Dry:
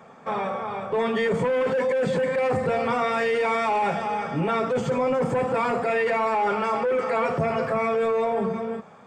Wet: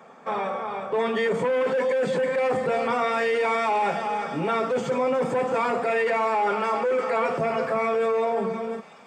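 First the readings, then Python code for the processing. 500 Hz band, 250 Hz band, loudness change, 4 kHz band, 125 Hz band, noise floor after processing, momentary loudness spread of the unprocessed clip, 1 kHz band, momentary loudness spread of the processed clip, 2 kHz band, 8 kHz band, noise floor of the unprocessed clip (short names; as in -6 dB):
0.0 dB, -2.5 dB, -0.5 dB, +0.5 dB, -6.0 dB, -48 dBFS, 5 LU, 0.0 dB, 5 LU, 0.0 dB, n/a, -48 dBFS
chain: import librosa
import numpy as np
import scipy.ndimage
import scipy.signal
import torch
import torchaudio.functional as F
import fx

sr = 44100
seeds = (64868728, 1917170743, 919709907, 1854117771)

p1 = scipy.signal.sosfilt(scipy.signal.butter(2, 210.0, 'highpass', fs=sr, output='sos'), x)
y = p1 + fx.echo_wet_highpass(p1, sr, ms=690, feedback_pct=66, hz=3700.0, wet_db=-10, dry=0)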